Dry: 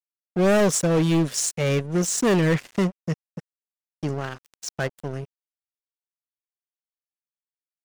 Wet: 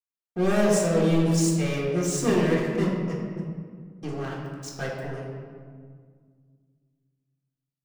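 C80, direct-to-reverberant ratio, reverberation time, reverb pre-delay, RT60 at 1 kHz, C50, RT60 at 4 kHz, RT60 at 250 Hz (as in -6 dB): 2.5 dB, -5.0 dB, 1.9 s, 3 ms, 1.8 s, 1.0 dB, 1.0 s, 2.7 s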